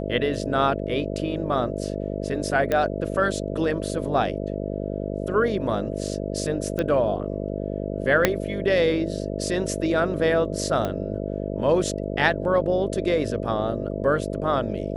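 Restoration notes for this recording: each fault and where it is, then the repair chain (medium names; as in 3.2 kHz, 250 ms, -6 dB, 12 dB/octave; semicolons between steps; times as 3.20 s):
buzz 50 Hz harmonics 13 -29 dBFS
2.72 s: pop -11 dBFS
6.79 s: pop -13 dBFS
8.25 s: pop -2 dBFS
10.85 s: pop -14 dBFS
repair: de-click; de-hum 50 Hz, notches 13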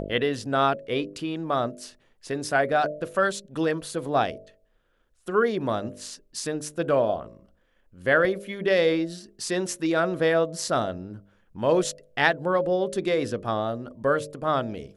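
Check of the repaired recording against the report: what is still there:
8.25 s: pop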